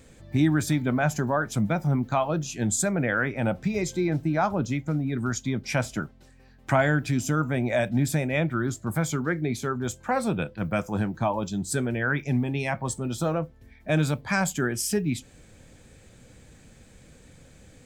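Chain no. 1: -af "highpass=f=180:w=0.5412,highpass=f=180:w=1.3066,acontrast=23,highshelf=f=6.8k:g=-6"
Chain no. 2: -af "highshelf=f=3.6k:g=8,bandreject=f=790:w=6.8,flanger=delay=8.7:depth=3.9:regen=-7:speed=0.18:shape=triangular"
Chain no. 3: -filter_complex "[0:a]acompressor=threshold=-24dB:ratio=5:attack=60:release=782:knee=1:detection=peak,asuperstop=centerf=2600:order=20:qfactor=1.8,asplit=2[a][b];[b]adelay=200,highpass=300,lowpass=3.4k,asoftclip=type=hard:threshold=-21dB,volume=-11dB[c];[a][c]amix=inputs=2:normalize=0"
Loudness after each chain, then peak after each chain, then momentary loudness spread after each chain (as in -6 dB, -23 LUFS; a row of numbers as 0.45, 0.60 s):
-23.5, -29.0, -28.5 LUFS; -6.5, -10.5, -12.0 dBFS; 6, 7, 3 LU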